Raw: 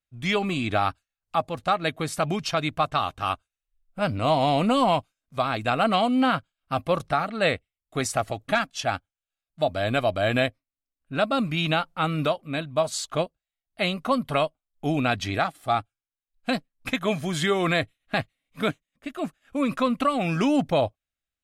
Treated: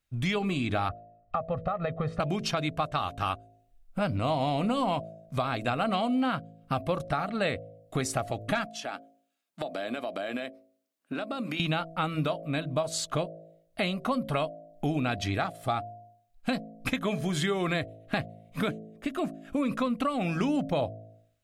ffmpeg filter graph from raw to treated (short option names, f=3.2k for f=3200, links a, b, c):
-filter_complex "[0:a]asettb=1/sr,asplit=3[a][b][c];[a]atrim=end=0.894[d];[b]atrim=start=0.89:end=2.2,asetpts=PTS-STARTPTS,afade=t=in:d=0.004:c=qsin,afade=t=out:st=1.306:d=0.004:c=qsin,lowpass=1.5k,aecho=1:1:1.6:0.85,atrim=end_sample=57771,acompressor=threshold=-23dB:ratio=6:attack=3.2:release=140:knee=1:detection=peak[e];[c]atrim=start=2.196[f];[d][e]acrossfade=d=0.004:c1=hsin:c2=qsin[g];[g][f]acrossfade=d=0.004:c1=qsin:c2=hsin,asettb=1/sr,asplit=3[h][i][j];[h]atrim=end=8.684[k];[i]atrim=start=8.68:end=11.6,asetpts=PTS-STARTPTS,afade=t=in:d=0.004:c=qsin,afade=t=out:st=2.916:d=0.004:c=qsin,highpass=f=220:w=0.5412,highpass=f=220:w=1.3066,acompressor=threshold=-37dB:ratio=5:attack=3.2:release=140:knee=1:detection=peak[l];[j]atrim=start=11.596[m];[k][l]acrossfade=d=0.004:c1=hsin:c2=qsin[n];[n][m]acrossfade=d=0.004:c1=qsin:c2=hsin,lowshelf=f=360:g=4.5,bandreject=f=54.36:t=h:w=4,bandreject=f=108.72:t=h:w=4,bandreject=f=163.08:t=h:w=4,bandreject=f=217.44:t=h:w=4,bandreject=f=271.8:t=h:w=4,bandreject=f=326.16:t=h:w=4,bandreject=f=380.52:t=h:w=4,bandreject=f=434.88:t=h:w=4,bandreject=f=489.24:t=h:w=4,bandreject=f=543.6:t=h:w=4,bandreject=f=597.96:t=h:w=4,bandreject=f=652.32:t=h:w=4,bandreject=f=706.68:t=h:w=4,acompressor=threshold=-38dB:ratio=3,volume=7.5dB"